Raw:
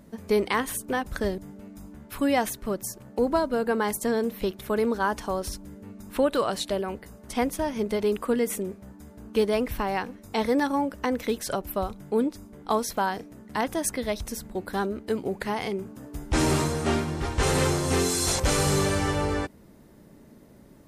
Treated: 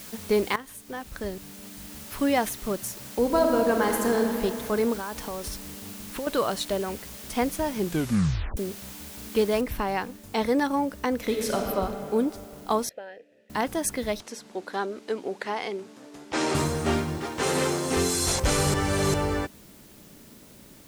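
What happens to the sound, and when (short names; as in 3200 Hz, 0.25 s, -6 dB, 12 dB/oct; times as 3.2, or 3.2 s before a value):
0.56–2.17 fade in, from -15.5 dB
3.21–4.18 reverb throw, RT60 2.9 s, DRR 1.5 dB
4.93–6.27 compressor 10:1, threshold -29 dBFS
7.76 tape stop 0.81 s
9.61 noise floor step -43 dB -54 dB
11.16–11.59 reverb throw, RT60 2.8 s, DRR 0 dB
12.89–13.5 vowel filter e
14.2–16.55 BPF 330–6600 Hz
17.18–17.97 Chebyshev high-pass 220 Hz
18.74–19.14 reverse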